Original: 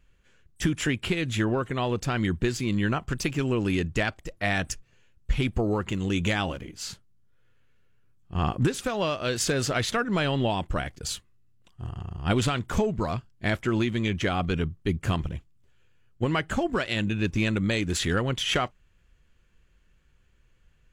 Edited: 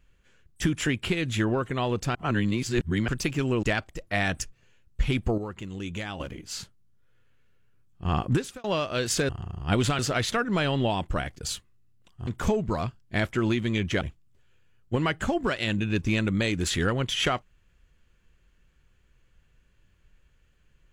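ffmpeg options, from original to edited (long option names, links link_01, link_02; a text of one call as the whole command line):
ffmpeg -i in.wav -filter_complex "[0:a]asplit=11[link_01][link_02][link_03][link_04][link_05][link_06][link_07][link_08][link_09][link_10][link_11];[link_01]atrim=end=2.152[link_12];[link_02]atrim=start=2.148:end=3.082,asetpts=PTS-STARTPTS,areverse[link_13];[link_03]atrim=start=3.078:end=3.632[link_14];[link_04]atrim=start=3.928:end=5.682[link_15];[link_05]atrim=start=5.678:end=6.502,asetpts=PTS-STARTPTS,volume=-8.5dB[link_16];[link_06]atrim=start=6.498:end=8.94,asetpts=PTS-STARTPTS,afade=type=out:start_time=2.132:duration=0.31[link_17];[link_07]atrim=start=8.94:end=9.592,asetpts=PTS-STARTPTS,afade=type=in:duration=0.004:curve=hsin[link_18];[link_08]atrim=start=11.868:end=12.572[link_19];[link_09]atrim=start=9.588:end=11.872[link_20];[link_10]atrim=start=12.568:end=14.312[link_21];[link_11]atrim=start=15.298[link_22];[link_12][link_13]acrossfade=duration=0.004:curve1=hsin:curve2=hsin[link_23];[link_23][link_14]acrossfade=duration=0.004:curve1=hsin:curve2=hsin[link_24];[link_24][link_15]acrossfade=duration=0.004:curve1=hsin:curve2=hsin[link_25];[link_25][link_16]acrossfade=duration=0.004:curve1=hsin:curve2=hsin[link_26];[link_17][link_18]concat=n=2:v=0:a=1[link_27];[link_26][link_27]acrossfade=duration=0.004:curve1=hsin:curve2=hsin[link_28];[link_28][link_19]acrossfade=duration=0.004:curve1=hsin:curve2=hsin[link_29];[link_29][link_20]acrossfade=duration=0.004:curve1=hsin:curve2=hsin[link_30];[link_30][link_21]acrossfade=duration=0.004:curve1=hsin:curve2=hsin[link_31];[link_31][link_22]acrossfade=duration=0.004:curve1=hsin:curve2=hsin" out.wav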